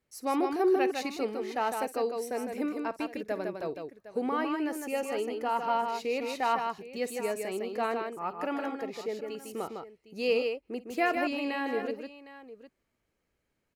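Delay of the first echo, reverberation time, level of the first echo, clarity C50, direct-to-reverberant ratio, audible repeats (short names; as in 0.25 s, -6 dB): 53 ms, none, -18.0 dB, none, none, 3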